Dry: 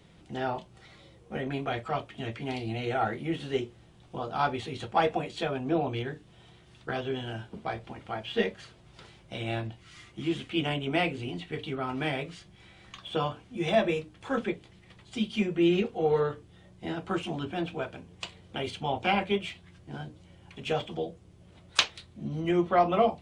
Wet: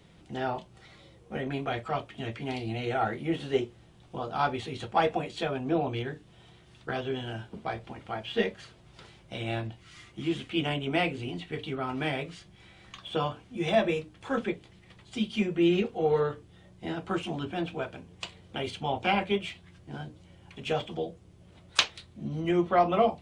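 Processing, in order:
0:03.20–0:03.65: dynamic equaliser 650 Hz, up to +5 dB, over −40 dBFS, Q 0.83

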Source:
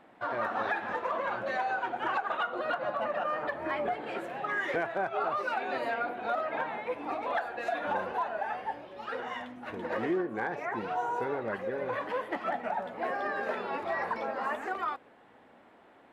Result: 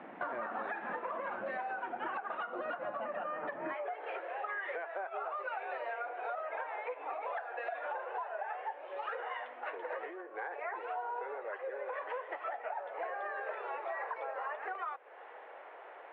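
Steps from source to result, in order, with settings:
low-pass filter 2,700 Hz 24 dB per octave
downward compressor 8 to 1, threshold −45 dBFS, peak gain reduction 18 dB
Butterworth high-pass 150 Hz 36 dB per octave, from 0:03.73 430 Hz
level +8.5 dB

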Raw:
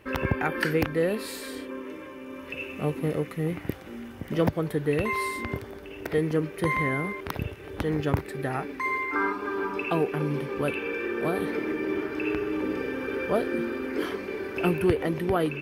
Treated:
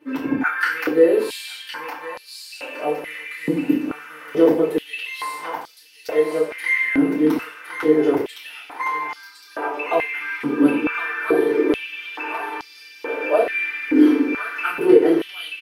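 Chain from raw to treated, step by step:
automatic gain control gain up to 5 dB
repeating echo 1,062 ms, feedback 37%, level −6 dB
feedback delay network reverb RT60 0.44 s, low-frequency decay 1.35×, high-frequency decay 0.95×, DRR −7 dB
high-pass on a step sequencer 2.3 Hz 260–4,700 Hz
level −10.5 dB

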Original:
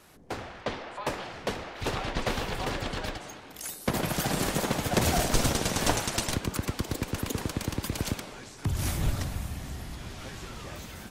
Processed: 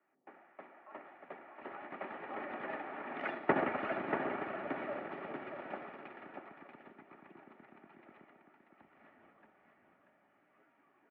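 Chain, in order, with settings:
source passing by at 0:03.25, 39 m/s, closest 4.8 metres
notch comb filter 540 Hz
on a send: single-tap delay 636 ms −6 dB
on the sum: single-sideband voice off tune −54 Hz 330–2,300 Hz
level +11 dB

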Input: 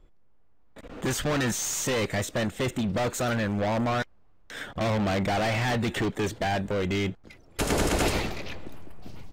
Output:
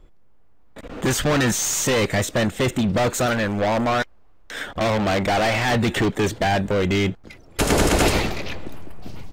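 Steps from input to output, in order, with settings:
0:03.26–0:05.72: parametric band 140 Hz −7 dB 1.2 octaves
level +7 dB

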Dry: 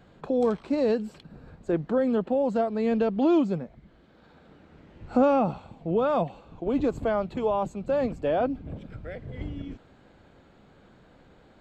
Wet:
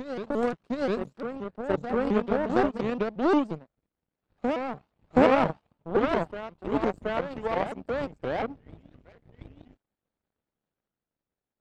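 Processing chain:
backwards echo 723 ms −3.5 dB
power curve on the samples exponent 2
pitch modulation by a square or saw wave saw up 5.7 Hz, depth 250 cents
level +5 dB

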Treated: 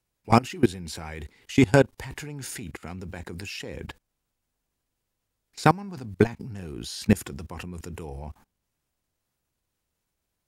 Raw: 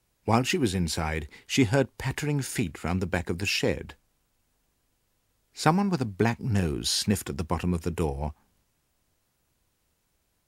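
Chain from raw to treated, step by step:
output level in coarse steps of 22 dB
level +7.5 dB

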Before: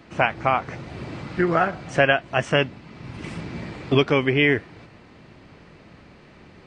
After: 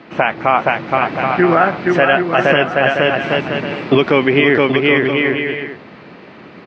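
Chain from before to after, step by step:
band-pass filter 200–4,200 Hz
high-frequency loss of the air 64 metres
bouncing-ball delay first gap 470 ms, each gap 0.65×, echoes 5
boost into a limiter +11.5 dB
level −1 dB

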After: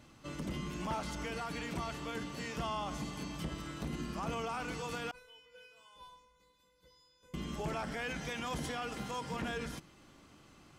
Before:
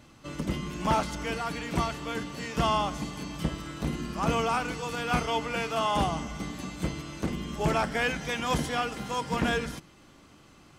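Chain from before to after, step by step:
0:05.11–0:07.34: tuned comb filter 500 Hz, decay 0.65 s, mix 100%
brickwall limiter −25.5 dBFS, peak gain reduction 7.5 dB
level −4.5 dB

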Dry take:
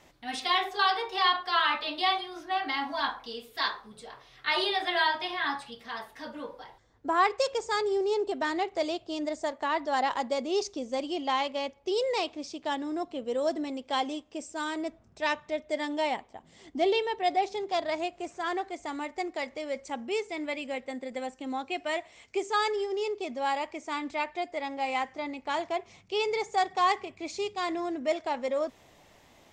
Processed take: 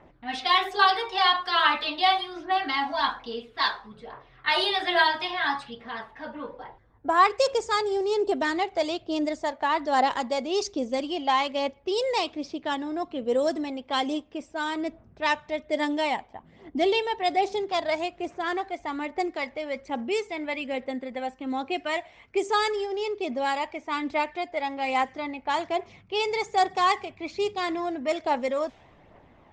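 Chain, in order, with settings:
phase shifter 1.2 Hz, delay 1.4 ms, feedback 34%
low-pass that shuts in the quiet parts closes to 1,500 Hz, open at −24 dBFS
level +3.5 dB

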